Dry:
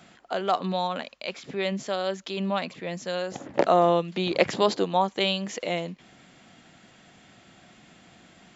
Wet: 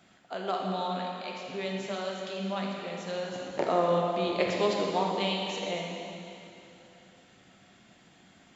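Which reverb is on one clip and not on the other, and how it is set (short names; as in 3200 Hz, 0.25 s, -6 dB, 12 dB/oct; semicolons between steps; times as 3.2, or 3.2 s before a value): plate-style reverb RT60 2.9 s, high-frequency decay 1×, DRR -1.5 dB; gain -8.5 dB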